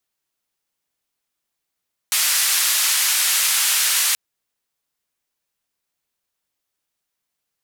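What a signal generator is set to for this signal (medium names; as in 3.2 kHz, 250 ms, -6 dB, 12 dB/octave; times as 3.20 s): noise band 1.5–13 kHz, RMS -18.5 dBFS 2.03 s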